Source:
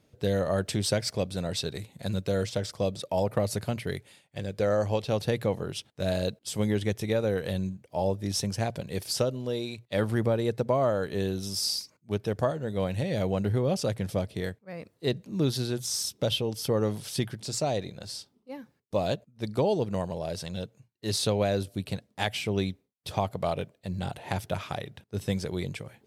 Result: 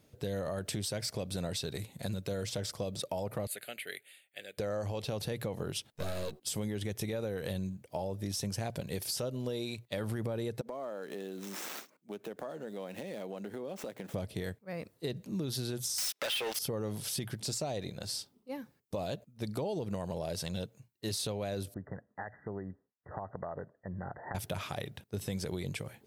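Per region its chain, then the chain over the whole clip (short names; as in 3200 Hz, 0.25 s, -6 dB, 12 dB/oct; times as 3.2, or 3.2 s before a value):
3.47–4.58 HPF 790 Hz + fixed phaser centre 2400 Hz, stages 4
5.92–6.4 half-wave gain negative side -12 dB + doubler 13 ms -4 dB + de-hum 372 Hz, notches 3
10.61–14.14 median filter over 9 samples + HPF 210 Hz 24 dB/oct + compressor 5:1, threshold -38 dBFS
15.98–16.59 HPF 830 Hz + sample leveller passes 5 + bell 2000 Hz +8 dB 1.8 oct
21.74–24.35 low shelf 420 Hz -7.5 dB + compressor 8:1, threshold -34 dBFS + brick-wall FIR low-pass 2000 Hz
whole clip: high shelf 11000 Hz +11 dB; limiter -22.5 dBFS; compressor, threshold -32 dBFS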